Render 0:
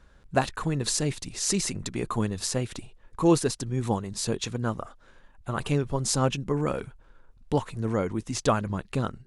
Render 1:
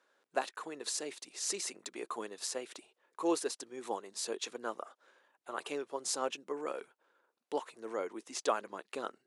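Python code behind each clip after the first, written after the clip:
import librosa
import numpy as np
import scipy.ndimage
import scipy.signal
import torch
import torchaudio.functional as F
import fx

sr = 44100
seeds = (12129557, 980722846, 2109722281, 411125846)

y = scipy.signal.sosfilt(scipy.signal.butter(4, 350.0, 'highpass', fs=sr, output='sos'), x)
y = fx.rider(y, sr, range_db=4, speed_s=2.0)
y = F.gain(torch.from_numpy(y), -8.5).numpy()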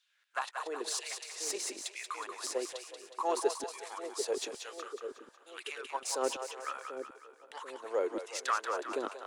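y = fx.diode_clip(x, sr, knee_db=-25.5)
y = fx.filter_lfo_highpass(y, sr, shape='saw_down', hz=1.1, low_hz=260.0, high_hz=3500.0, q=2.7)
y = fx.echo_split(y, sr, split_hz=530.0, low_ms=741, high_ms=183, feedback_pct=52, wet_db=-6.5)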